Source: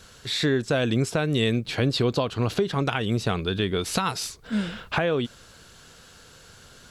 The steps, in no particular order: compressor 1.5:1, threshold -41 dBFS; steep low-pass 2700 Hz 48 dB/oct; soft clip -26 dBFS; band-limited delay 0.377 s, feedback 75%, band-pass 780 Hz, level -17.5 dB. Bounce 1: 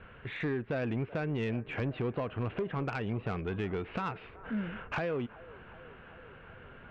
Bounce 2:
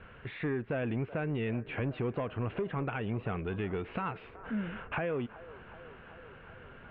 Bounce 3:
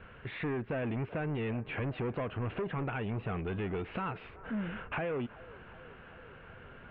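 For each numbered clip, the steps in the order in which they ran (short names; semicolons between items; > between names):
steep low-pass > compressor > soft clip > band-limited delay; compressor > band-limited delay > soft clip > steep low-pass; soft clip > steep low-pass > compressor > band-limited delay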